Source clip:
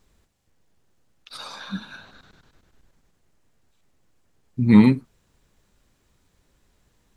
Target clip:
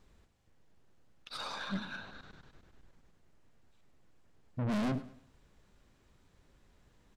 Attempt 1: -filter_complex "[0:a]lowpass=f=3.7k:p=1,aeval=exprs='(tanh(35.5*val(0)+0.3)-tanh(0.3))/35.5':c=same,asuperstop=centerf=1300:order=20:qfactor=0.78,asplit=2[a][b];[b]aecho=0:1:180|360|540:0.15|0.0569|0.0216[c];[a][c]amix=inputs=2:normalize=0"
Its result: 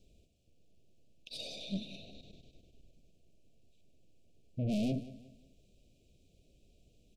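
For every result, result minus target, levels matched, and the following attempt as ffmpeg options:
echo 75 ms late; 1000 Hz band -12.5 dB
-filter_complex "[0:a]lowpass=f=3.7k:p=1,aeval=exprs='(tanh(35.5*val(0)+0.3)-tanh(0.3))/35.5':c=same,asuperstop=centerf=1300:order=20:qfactor=0.78,asplit=2[a][b];[b]aecho=0:1:105|210|315:0.15|0.0569|0.0216[c];[a][c]amix=inputs=2:normalize=0"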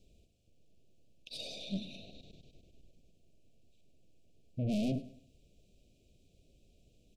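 1000 Hz band -12.5 dB
-filter_complex "[0:a]lowpass=f=3.7k:p=1,aeval=exprs='(tanh(35.5*val(0)+0.3)-tanh(0.3))/35.5':c=same,asplit=2[a][b];[b]aecho=0:1:105|210|315:0.15|0.0569|0.0216[c];[a][c]amix=inputs=2:normalize=0"

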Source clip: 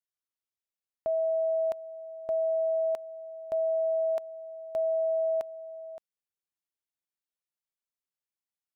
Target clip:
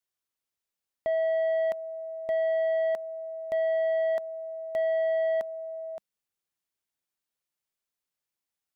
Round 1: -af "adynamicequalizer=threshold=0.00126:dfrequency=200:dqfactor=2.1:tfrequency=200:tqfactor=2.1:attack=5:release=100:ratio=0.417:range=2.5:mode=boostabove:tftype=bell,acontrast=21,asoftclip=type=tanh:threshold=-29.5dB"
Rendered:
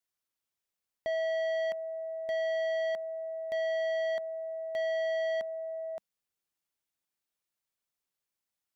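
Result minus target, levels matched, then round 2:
soft clip: distortion +7 dB
-af "adynamicequalizer=threshold=0.00126:dfrequency=200:dqfactor=2.1:tfrequency=200:tqfactor=2.1:attack=5:release=100:ratio=0.417:range=2.5:mode=boostabove:tftype=bell,acontrast=21,asoftclip=type=tanh:threshold=-23dB"

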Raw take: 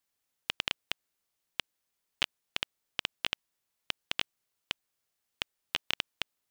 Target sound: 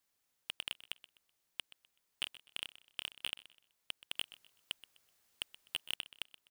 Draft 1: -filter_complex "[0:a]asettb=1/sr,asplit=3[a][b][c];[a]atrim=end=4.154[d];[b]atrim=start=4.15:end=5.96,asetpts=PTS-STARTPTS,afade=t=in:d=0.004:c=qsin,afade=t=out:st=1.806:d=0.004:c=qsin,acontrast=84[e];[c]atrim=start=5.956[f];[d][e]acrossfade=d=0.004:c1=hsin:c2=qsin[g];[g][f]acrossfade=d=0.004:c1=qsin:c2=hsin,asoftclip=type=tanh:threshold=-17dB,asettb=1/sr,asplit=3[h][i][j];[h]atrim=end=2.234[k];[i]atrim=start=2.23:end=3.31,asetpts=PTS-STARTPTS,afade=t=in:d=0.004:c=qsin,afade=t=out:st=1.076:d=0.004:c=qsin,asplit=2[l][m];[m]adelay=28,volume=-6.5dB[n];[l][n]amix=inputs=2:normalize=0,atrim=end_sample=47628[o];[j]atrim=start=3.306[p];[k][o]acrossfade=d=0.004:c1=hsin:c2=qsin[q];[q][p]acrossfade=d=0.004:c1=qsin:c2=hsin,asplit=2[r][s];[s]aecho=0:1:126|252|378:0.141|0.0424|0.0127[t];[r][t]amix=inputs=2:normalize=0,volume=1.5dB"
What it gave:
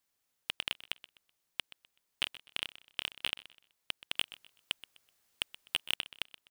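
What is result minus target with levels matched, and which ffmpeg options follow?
soft clip: distortion -4 dB
-filter_complex "[0:a]asettb=1/sr,asplit=3[a][b][c];[a]atrim=end=4.154[d];[b]atrim=start=4.15:end=5.96,asetpts=PTS-STARTPTS,afade=t=in:d=0.004:c=qsin,afade=t=out:st=1.806:d=0.004:c=qsin,acontrast=84[e];[c]atrim=start=5.956[f];[d][e]acrossfade=d=0.004:c1=hsin:c2=qsin[g];[g][f]acrossfade=d=0.004:c1=qsin:c2=hsin,asoftclip=type=tanh:threshold=-25dB,asettb=1/sr,asplit=3[h][i][j];[h]atrim=end=2.234[k];[i]atrim=start=2.23:end=3.31,asetpts=PTS-STARTPTS,afade=t=in:d=0.004:c=qsin,afade=t=out:st=1.076:d=0.004:c=qsin,asplit=2[l][m];[m]adelay=28,volume=-6.5dB[n];[l][n]amix=inputs=2:normalize=0,atrim=end_sample=47628[o];[j]atrim=start=3.306[p];[k][o]acrossfade=d=0.004:c1=hsin:c2=qsin[q];[q][p]acrossfade=d=0.004:c1=qsin:c2=hsin,asplit=2[r][s];[s]aecho=0:1:126|252|378:0.141|0.0424|0.0127[t];[r][t]amix=inputs=2:normalize=0,volume=1.5dB"

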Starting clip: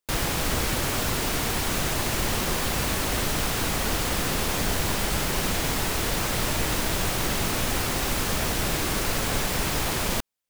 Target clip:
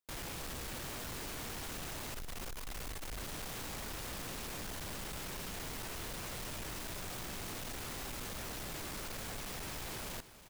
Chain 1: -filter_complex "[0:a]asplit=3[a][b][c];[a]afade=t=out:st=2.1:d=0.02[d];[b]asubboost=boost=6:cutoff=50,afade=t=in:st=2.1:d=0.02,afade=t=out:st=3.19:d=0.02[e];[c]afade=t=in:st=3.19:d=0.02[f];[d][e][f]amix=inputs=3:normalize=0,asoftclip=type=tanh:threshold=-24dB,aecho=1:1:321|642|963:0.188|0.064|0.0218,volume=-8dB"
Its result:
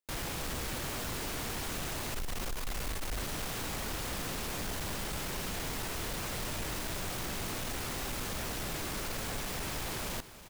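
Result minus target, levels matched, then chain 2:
soft clip: distortion -5 dB
-filter_complex "[0:a]asplit=3[a][b][c];[a]afade=t=out:st=2.1:d=0.02[d];[b]asubboost=boost=6:cutoff=50,afade=t=in:st=2.1:d=0.02,afade=t=out:st=3.19:d=0.02[e];[c]afade=t=in:st=3.19:d=0.02[f];[d][e][f]amix=inputs=3:normalize=0,asoftclip=type=tanh:threshold=-33dB,aecho=1:1:321|642|963:0.188|0.064|0.0218,volume=-8dB"

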